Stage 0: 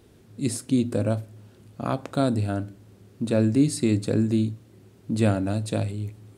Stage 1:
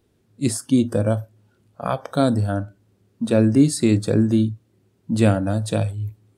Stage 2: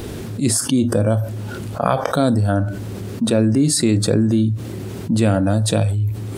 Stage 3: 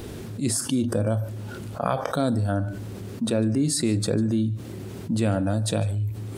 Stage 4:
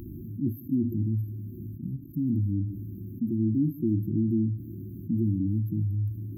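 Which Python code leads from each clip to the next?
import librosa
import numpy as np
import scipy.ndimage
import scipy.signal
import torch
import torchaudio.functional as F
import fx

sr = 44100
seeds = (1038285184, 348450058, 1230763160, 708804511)

y1 = fx.noise_reduce_blind(x, sr, reduce_db=15)
y1 = y1 * 10.0 ** (5.0 / 20.0)
y2 = fx.env_flatten(y1, sr, amount_pct=70)
y2 = y2 * 10.0 ** (-3.0 / 20.0)
y3 = y2 + 10.0 ** (-21.5 / 20.0) * np.pad(y2, (int(148 * sr / 1000.0), 0))[:len(y2)]
y3 = y3 * 10.0 ** (-7.0 / 20.0)
y4 = fx.brickwall_bandstop(y3, sr, low_hz=370.0, high_hz=12000.0)
y4 = y4 * 10.0 ** (-2.0 / 20.0)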